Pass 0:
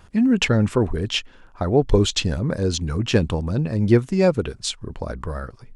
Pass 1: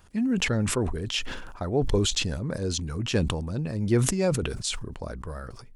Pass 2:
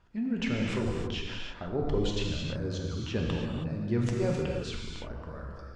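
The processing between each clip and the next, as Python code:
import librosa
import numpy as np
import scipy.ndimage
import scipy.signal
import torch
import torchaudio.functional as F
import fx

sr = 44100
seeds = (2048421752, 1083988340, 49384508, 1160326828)

y1 = fx.high_shelf(x, sr, hz=6400.0, db=10.0)
y1 = fx.sustainer(y1, sr, db_per_s=42.0)
y1 = F.gain(torch.from_numpy(y1), -8.0).numpy()
y2 = fx.air_absorb(y1, sr, metres=160.0)
y2 = fx.rev_gated(y2, sr, seeds[0], gate_ms=350, shape='flat', drr_db=-1.5)
y2 = F.gain(torch.from_numpy(y2), -7.5).numpy()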